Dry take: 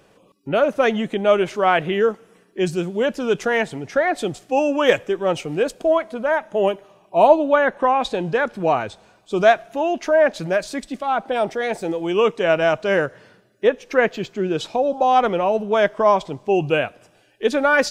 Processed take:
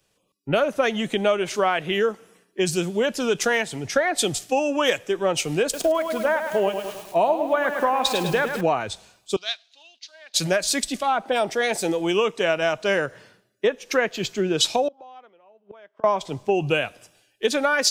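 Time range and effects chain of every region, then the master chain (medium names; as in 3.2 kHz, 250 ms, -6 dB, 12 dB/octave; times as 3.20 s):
5.63–8.61 s: upward compressor, threshold -29 dBFS + bit-crushed delay 105 ms, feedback 55%, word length 7-bit, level -8 dB
9.36–10.34 s: block-companded coder 7-bit + band-pass filter 4.1 kHz, Q 4.1 + distance through air 72 m
14.88–16.04 s: band-pass 260–3700 Hz + inverted gate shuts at -20 dBFS, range -25 dB
whole clip: treble shelf 2.8 kHz +11.5 dB; compression 8:1, threshold -21 dBFS; three bands expanded up and down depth 70%; trim +3 dB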